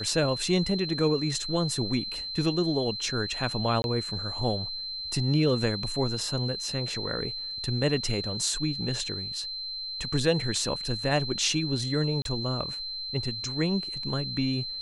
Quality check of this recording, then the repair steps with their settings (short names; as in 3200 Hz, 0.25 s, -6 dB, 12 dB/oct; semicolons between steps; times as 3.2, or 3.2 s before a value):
tone 4100 Hz -33 dBFS
3.82–3.84 gap 21 ms
12.22–12.25 gap 32 ms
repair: notch 4100 Hz, Q 30; interpolate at 3.82, 21 ms; interpolate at 12.22, 32 ms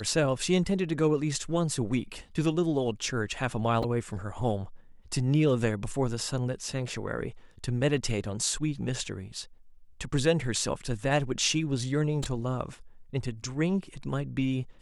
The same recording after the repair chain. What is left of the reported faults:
none